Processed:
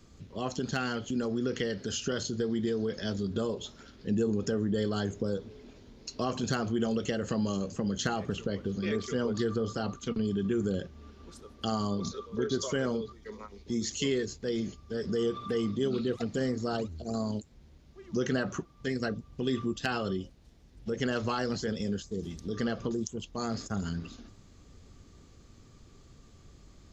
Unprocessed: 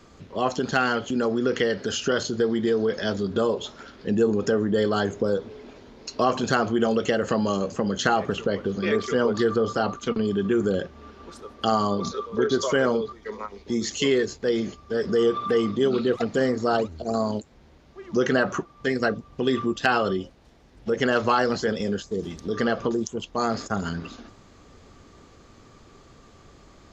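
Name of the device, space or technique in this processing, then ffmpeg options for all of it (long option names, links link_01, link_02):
smiley-face EQ: -af "lowshelf=frequency=200:gain=6.5,equalizer=frequency=920:width_type=o:width=2.8:gain=-7,highshelf=frequency=5700:gain=5,volume=-6dB"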